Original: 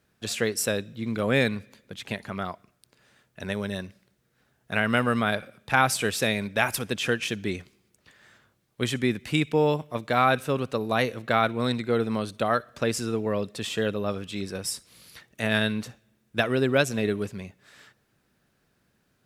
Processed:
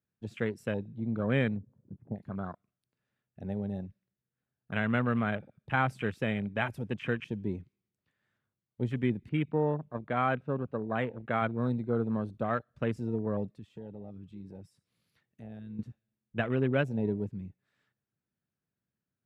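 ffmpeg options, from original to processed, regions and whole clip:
ffmpeg -i in.wav -filter_complex "[0:a]asettb=1/sr,asplit=3[link_01][link_02][link_03];[link_01]atrim=end=1.574[link_04];[link_02]atrim=start=1.57:end=2.16,asetpts=PTS-STARTPTS,afade=type=in:duration=0.004:curve=qsin,afade=type=out:start_time=0.586:duration=0.004:curve=qsin,lowpass=frequency=1000:width=0.5412,lowpass=frequency=1000:width=1.3066,acompressor=mode=upward:threshold=-43dB:ratio=2.5:attack=3.2:release=140:knee=2.83:detection=peak[link_05];[link_03]atrim=start=2.156[link_06];[link_04][link_05]acrossfade=duration=0.004:curve1=hsin:curve2=qsin[link_07];[link_07][link_06]acrossfade=duration=0.004:curve1=qsin:curve2=hsin,asettb=1/sr,asplit=3[link_08][link_09][link_10];[link_08]atrim=end=9.294[link_11];[link_09]atrim=start=9.29:end=11.42,asetpts=PTS-STARTPTS,afade=type=in:duration=0.004:curve=qsin,afade=type=out:start_time=2.126:duration=0.004:curve=qsin,lowpass=2800,lowshelf=frequency=120:gain=-7[link_12];[link_10]atrim=start=11.416[link_13];[link_11][link_12]acrossfade=duration=0.004:curve1=hsin:curve2=qsin[link_14];[link_14][link_13]acrossfade=duration=0.004:curve1=qsin:curve2=hsin,asettb=1/sr,asplit=3[link_15][link_16][link_17];[link_15]atrim=end=13.484[link_18];[link_16]atrim=start=13.48:end=15.79,asetpts=PTS-STARTPTS,afade=type=in:duration=0.004:curve=qsin,afade=type=out:start_time=2.306:duration=0.004:curve=qsin,highpass=61,acompressor=threshold=-40dB:ratio=2.5:attack=3.2:release=140:knee=1:detection=peak[link_19];[link_17]atrim=start=15.786[link_20];[link_18][link_19]acrossfade=duration=0.004:curve1=hsin:curve2=qsin[link_21];[link_21][link_20]acrossfade=duration=0.004:curve1=qsin:curve2=hsin,highpass=82,bass=frequency=250:gain=8,treble=frequency=4000:gain=-8,afwtdn=0.0251,volume=-7.5dB" out.wav

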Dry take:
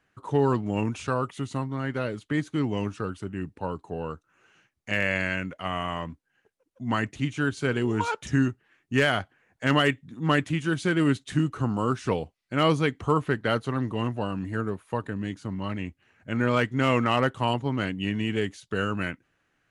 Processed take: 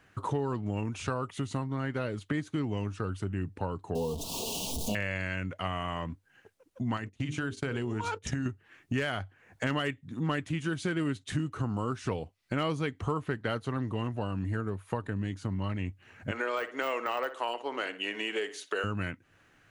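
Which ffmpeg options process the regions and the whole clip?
ffmpeg -i in.wav -filter_complex "[0:a]asettb=1/sr,asplit=3[link_01][link_02][link_03];[link_01]atrim=end=3.954[link_04];[link_02]atrim=start=3.95:end=4.95,asetpts=PTS-STARTPTS,afade=type=in:duration=0.004:curve=qsin,afade=type=out:start_time=0.996:duration=0.004:curve=qsin,aeval=exprs='val(0)+0.5*0.0251*sgn(val(0))':channel_layout=same,asuperstop=centerf=1700:order=8:qfactor=0.79,aecho=1:1:4.4:0.65,atrim=end_sample=44100[link_05];[link_03]atrim=start=4.946[link_06];[link_04][link_05]acrossfade=duration=0.004:curve1=hsin:curve2=qsin[link_07];[link_07][link_06]acrossfade=duration=0.004:curve1=qsin:curve2=hsin,asettb=1/sr,asplit=3[link_08][link_09][link_10];[link_08]atrim=end=6.974[link_11];[link_09]atrim=start=6.97:end=8.46,asetpts=PTS-STARTPTS,afade=type=in:duration=0.004:curve=qsin,afade=type=out:start_time=1.486:duration=0.004:curve=qsin,bandreject=frequency=50:width_type=h:width=6,bandreject=frequency=100:width_type=h:width=6,bandreject=frequency=150:width_type=h:width=6,bandreject=frequency=200:width_type=h:width=6,bandreject=frequency=250:width_type=h:width=6,bandreject=frequency=300:width_type=h:width=6,bandreject=frequency=350:width_type=h:width=6,bandreject=frequency=400:width_type=h:width=6,bandreject=frequency=450:width_type=h:width=6,bandreject=frequency=500:width_type=h:width=6,acompressor=threshold=-27dB:ratio=4:attack=3.2:release=140:knee=1:detection=peak,agate=range=-24dB:threshold=-40dB:ratio=16:release=100:detection=peak[link_12];[link_10]atrim=start=8.456[link_13];[link_11][link_12]acrossfade=duration=0.004:curve1=hsin:curve2=qsin[link_14];[link_14][link_13]acrossfade=duration=0.004:curve1=qsin:curve2=hsin,asettb=1/sr,asplit=3[link_15][link_16][link_17];[link_15]atrim=end=16.314[link_18];[link_16]atrim=start=16.31:end=18.84,asetpts=PTS-STARTPTS,afade=type=in:duration=0.004:curve=qsin,afade=type=out:start_time=2.526:duration=0.004:curve=qsin,highpass=frequency=400:width=0.5412,highpass=frequency=400:width=1.3066,deesser=0.95,asplit=2[link_19][link_20];[link_20]adelay=60,lowpass=frequency=3000:poles=1,volume=-14dB,asplit=2[link_21][link_22];[link_22]adelay=60,lowpass=frequency=3000:poles=1,volume=0.3,asplit=2[link_23][link_24];[link_24]adelay=60,lowpass=frequency=3000:poles=1,volume=0.3[link_25];[link_19][link_21][link_23][link_25]amix=inputs=4:normalize=0,atrim=end_sample=111573[link_26];[link_17]atrim=start=18.836[link_27];[link_18][link_26]acrossfade=duration=0.004:curve1=hsin:curve2=qsin[link_28];[link_28][link_27]acrossfade=duration=0.004:curve1=qsin:curve2=hsin,equalizer=frequency=96:width_type=o:width=0.3:gain=8,acompressor=threshold=-40dB:ratio=4,volume=8.5dB" out.wav

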